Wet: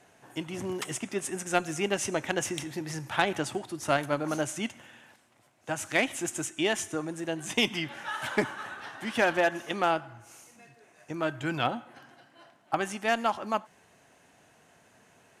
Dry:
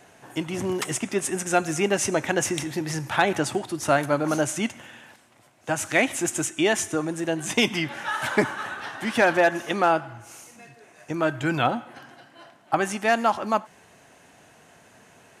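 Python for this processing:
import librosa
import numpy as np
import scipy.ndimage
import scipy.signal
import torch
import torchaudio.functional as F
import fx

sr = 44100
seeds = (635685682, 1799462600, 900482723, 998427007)

y = fx.cheby_harmonics(x, sr, harmonics=(3,), levels_db=(-18,), full_scale_db=-5.5)
y = fx.dynamic_eq(y, sr, hz=3100.0, q=3.7, threshold_db=-45.0, ratio=4.0, max_db=4)
y = F.gain(torch.from_numpy(y), -3.0).numpy()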